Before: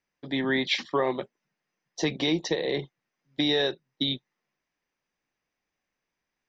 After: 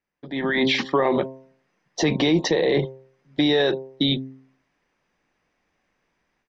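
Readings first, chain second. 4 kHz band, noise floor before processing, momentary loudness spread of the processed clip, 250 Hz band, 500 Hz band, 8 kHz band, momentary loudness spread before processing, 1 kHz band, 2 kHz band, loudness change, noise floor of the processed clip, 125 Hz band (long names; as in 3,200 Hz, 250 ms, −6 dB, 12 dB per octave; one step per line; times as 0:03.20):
+3.0 dB, −85 dBFS, 13 LU, +7.0 dB, +7.0 dB, can't be measured, 12 LU, +6.5 dB, +5.0 dB, +5.5 dB, −74 dBFS, +8.5 dB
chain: high-shelf EQ 3,600 Hz −11 dB
hum removal 132.3 Hz, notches 8
brickwall limiter −25.5 dBFS, peak gain reduction 10 dB
automatic gain control gain up to 14.5 dB
downsampling to 22,050 Hz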